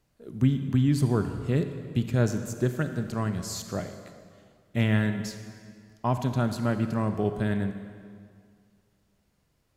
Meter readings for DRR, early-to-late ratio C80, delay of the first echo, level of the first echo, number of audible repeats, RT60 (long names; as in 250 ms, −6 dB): 8.0 dB, 9.5 dB, no echo audible, no echo audible, no echo audible, 2.0 s